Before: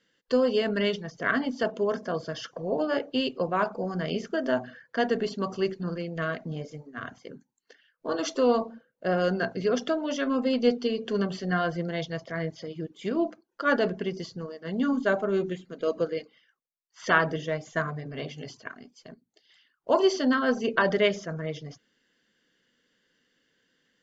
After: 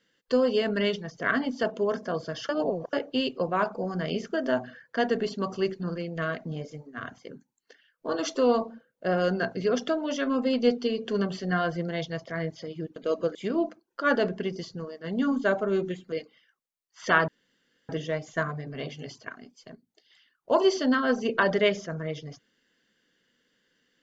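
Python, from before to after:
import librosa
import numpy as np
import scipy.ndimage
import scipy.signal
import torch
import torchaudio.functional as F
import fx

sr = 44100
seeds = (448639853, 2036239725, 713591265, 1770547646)

y = fx.edit(x, sr, fx.reverse_span(start_s=2.49, length_s=0.44),
    fx.move(start_s=15.73, length_s=0.39, to_s=12.96),
    fx.insert_room_tone(at_s=17.28, length_s=0.61), tone=tone)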